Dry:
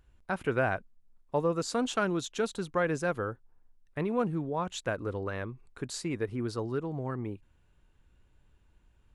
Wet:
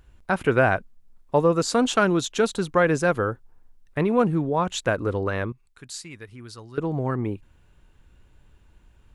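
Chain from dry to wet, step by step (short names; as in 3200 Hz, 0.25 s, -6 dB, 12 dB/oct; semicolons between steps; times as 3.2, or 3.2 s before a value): 5.52–6.78 passive tone stack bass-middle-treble 5-5-5; gain +9 dB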